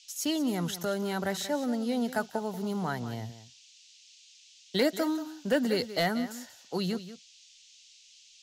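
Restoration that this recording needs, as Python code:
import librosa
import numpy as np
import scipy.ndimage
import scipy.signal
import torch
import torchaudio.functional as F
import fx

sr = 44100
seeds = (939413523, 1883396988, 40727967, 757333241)

y = fx.fix_declip(x, sr, threshold_db=-17.0)
y = fx.noise_reduce(y, sr, print_start_s=3.59, print_end_s=4.09, reduce_db=20.0)
y = fx.fix_echo_inverse(y, sr, delay_ms=184, level_db=-13.5)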